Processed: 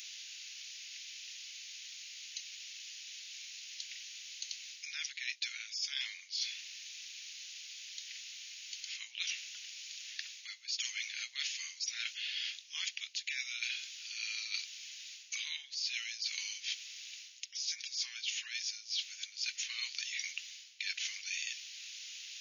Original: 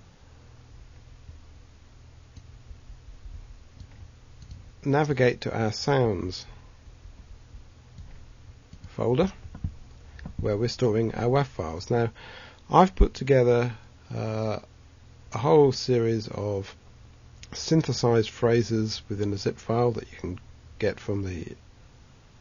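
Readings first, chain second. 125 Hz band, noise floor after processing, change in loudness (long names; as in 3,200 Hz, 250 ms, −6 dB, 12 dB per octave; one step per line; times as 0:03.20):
below −40 dB, −55 dBFS, −13.5 dB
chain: Butterworth high-pass 2,400 Hz 36 dB per octave
reversed playback
downward compressor 20 to 1, threshold −53 dBFS, peak gain reduction 25 dB
reversed playback
level +18 dB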